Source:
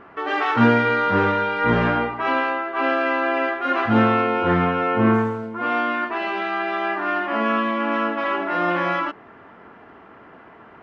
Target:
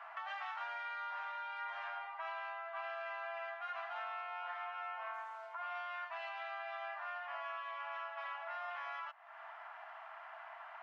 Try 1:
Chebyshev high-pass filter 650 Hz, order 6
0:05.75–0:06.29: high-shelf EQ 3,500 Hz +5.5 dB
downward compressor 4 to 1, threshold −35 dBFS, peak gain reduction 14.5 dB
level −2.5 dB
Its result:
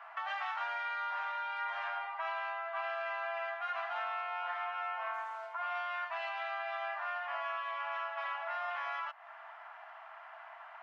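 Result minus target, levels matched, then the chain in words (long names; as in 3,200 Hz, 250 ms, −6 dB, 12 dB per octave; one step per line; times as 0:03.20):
downward compressor: peak gain reduction −5.5 dB
Chebyshev high-pass filter 650 Hz, order 6
0:05.75–0:06.29: high-shelf EQ 3,500 Hz +5.5 dB
downward compressor 4 to 1, threshold −42.5 dBFS, peak gain reduction 20.5 dB
level −2.5 dB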